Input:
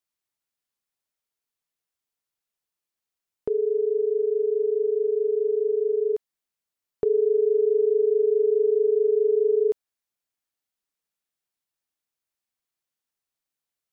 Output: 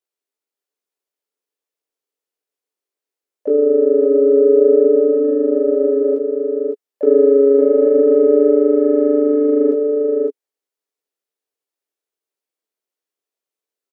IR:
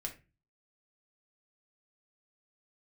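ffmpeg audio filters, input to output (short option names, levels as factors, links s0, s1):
-filter_complex "[0:a]asoftclip=type=tanh:threshold=0.158,highpass=f=420:t=q:w=5,flanger=delay=17.5:depth=3.2:speed=0.17,asplit=3[s0][s1][s2];[s1]asetrate=29433,aresample=44100,atempo=1.49831,volume=0.316[s3];[s2]asetrate=58866,aresample=44100,atempo=0.749154,volume=0.282[s4];[s0][s3][s4]amix=inputs=3:normalize=0,asplit=2[s5][s6];[s6]aecho=0:1:558:0.531[s7];[s5][s7]amix=inputs=2:normalize=0"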